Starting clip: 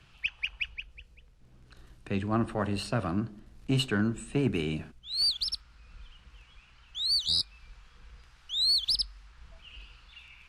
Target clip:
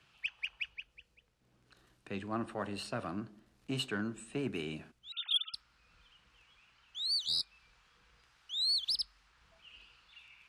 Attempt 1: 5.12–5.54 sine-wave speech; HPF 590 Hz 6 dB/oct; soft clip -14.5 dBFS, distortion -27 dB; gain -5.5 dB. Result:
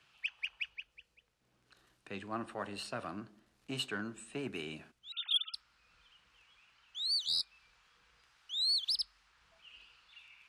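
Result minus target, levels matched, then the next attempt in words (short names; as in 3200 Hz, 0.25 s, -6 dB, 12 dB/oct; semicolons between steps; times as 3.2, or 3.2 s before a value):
250 Hz band -4.0 dB
5.12–5.54 sine-wave speech; HPF 270 Hz 6 dB/oct; soft clip -14.5 dBFS, distortion -27 dB; gain -5.5 dB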